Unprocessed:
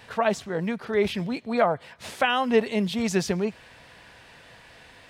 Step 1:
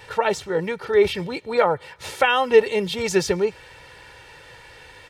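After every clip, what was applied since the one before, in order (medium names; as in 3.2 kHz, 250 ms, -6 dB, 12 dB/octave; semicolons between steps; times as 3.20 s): comb 2.2 ms, depth 70%; trim +3 dB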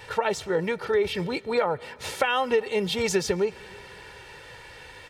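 compression 6:1, threshold -20 dBFS, peak gain reduction 11.5 dB; on a send at -24 dB: reverberation RT60 3.6 s, pre-delay 105 ms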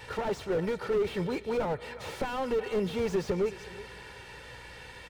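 hum 60 Hz, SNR 27 dB; delay 368 ms -21 dB; slew-rate limiter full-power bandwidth 33 Hz; trim -2 dB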